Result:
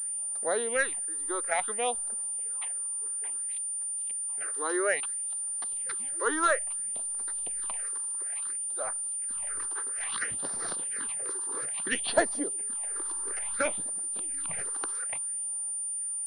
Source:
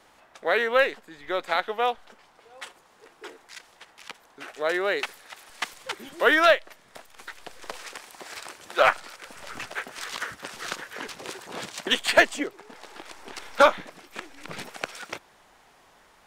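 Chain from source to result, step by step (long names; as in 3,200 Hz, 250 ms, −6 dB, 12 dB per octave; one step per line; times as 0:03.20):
sample-and-hold tremolo 1.4 Hz, depth 85%
all-pass phaser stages 6, 0.59 Hz, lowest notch 160–2,800 Hz
switching amplifier with a slow clock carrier 9,200 Hz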